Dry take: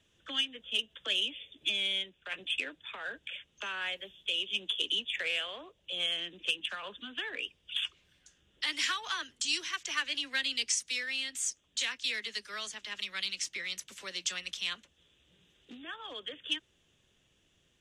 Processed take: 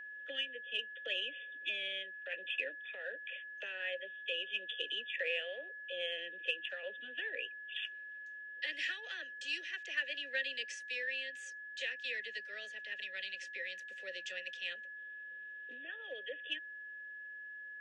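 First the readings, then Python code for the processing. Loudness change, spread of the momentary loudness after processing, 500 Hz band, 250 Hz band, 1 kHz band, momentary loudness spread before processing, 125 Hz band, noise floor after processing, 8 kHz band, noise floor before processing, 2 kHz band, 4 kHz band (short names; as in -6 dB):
-6.5 dB, 10 LU, +2.0 dB, -12.0 dB, -17.5 dB, 10 LU, n/a, -49 dBFS, -20.5 dB, -71 dBFS, -1.0 dB, -9.0 dB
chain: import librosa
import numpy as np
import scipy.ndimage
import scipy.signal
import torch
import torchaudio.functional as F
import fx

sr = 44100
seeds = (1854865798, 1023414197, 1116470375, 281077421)

y = fx.vowel_filter(x, sr, vowel='e')
y = y + 10.0 ** (-52.0 / 20.0) * np.sin(2.0 * np.pi * 1700.0 * np.arange(len(y)) / sr)
y = F.gain(torch.from_numpy(y), 6.5).numpy()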